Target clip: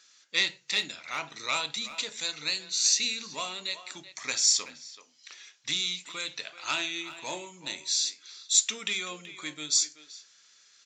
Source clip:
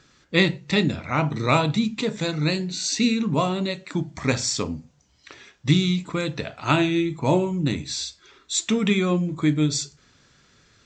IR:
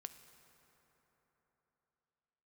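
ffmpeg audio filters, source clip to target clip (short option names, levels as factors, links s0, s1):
-filter_complex "[0:a]lowshelf=f=170:g=-7,acontrast=84,aresample=16000,aresample=44100,aderivative,asplit=2[s0][s1];[s1]adelay=380,highpass=300,lowpass=3400,asoftclip=type=hard:threshold=0.0944,volume=0.224[s2];[s0][s2]amix=inputs=2:normalize=0,volume=0.891"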